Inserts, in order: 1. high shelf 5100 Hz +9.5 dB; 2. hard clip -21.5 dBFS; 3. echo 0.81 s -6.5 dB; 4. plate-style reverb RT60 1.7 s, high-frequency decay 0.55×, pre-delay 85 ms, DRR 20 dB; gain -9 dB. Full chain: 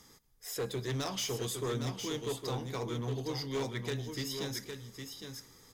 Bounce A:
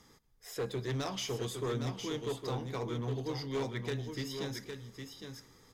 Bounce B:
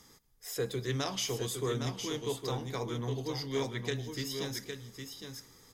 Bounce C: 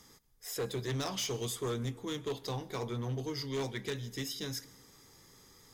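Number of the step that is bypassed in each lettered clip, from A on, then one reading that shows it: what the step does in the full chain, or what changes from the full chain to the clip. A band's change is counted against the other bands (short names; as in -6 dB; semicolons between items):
1, 8 kHz band -5.5 dB; 2, distortion -14 dB; 3, momentary loudness spread change -4 LU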